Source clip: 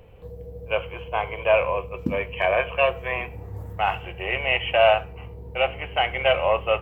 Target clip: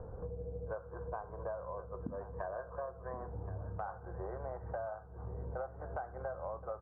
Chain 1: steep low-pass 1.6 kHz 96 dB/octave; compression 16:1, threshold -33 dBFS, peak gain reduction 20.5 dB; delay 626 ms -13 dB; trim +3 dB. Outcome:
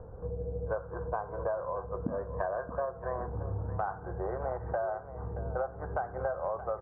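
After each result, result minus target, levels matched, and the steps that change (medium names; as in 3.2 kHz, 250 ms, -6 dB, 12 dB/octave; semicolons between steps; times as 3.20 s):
echo 449 ms early; compression: peak gain reduction -8 dB
change: delay 1075 ms -13 dB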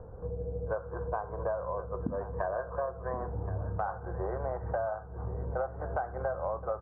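compression: peak gain reduction -8 dB
change: compression 16:1, threshold -41.5 dBFS, peak gain reduction 28.5 dB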